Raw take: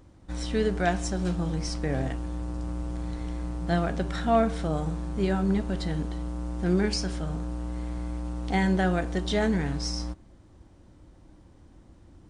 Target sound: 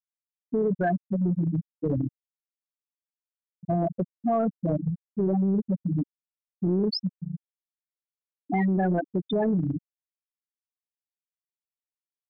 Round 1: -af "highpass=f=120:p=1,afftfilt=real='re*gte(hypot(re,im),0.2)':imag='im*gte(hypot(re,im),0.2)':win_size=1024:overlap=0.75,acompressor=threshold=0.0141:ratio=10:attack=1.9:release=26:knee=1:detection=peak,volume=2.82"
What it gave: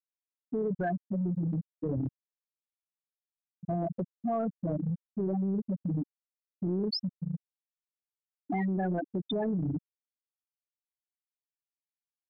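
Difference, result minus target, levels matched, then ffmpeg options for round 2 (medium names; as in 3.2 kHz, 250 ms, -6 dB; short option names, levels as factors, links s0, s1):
compression: peak gain reduction +6.5 dB
-af "highpass=f=120:p=1,afftfilt=real='re*gte(hypot(re,im),0.2)':imag='im*gte(hypot(re,im),0.2)':win_size=1024:overlap=0.75,acompressor=threshold=0.0316:ratio=10:attack=1.9:release=26:knee=1:detection=peak,volume=2.82"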